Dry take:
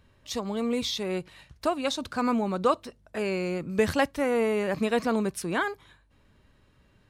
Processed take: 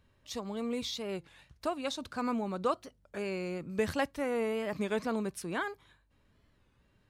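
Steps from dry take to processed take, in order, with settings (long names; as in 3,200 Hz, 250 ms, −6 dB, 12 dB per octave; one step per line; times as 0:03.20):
wow of a warped record 33 1/3 rpm, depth 160 cents
level −7 dB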